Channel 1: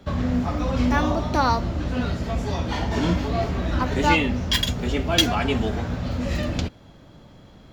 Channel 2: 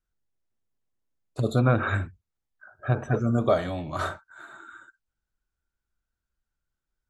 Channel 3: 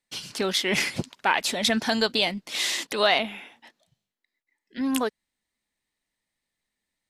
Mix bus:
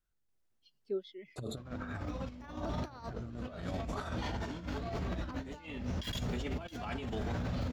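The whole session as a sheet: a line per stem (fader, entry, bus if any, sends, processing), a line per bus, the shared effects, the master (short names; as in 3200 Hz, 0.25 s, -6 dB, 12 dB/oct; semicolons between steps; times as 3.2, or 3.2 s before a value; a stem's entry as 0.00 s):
-5.5 dB, 1.50 s, no send, dry
-2.0 dB, 0.00 s, no send, limiter -17.5 dBFS, peak gain reduction 9.5 dB
-8.0 dB, 0.50 s, no send, harmonic tremolo 8.9 Hz, depth 50%, crossover 560 Hz; spectral expander 2.5:1; auto duck -17 dB, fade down 0.40 s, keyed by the second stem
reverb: off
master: negative-ratio compressor -32 dBFS, ratio -0.5; random-step tremolo; limiter -28 dBFS, peak gain reduction 11 dB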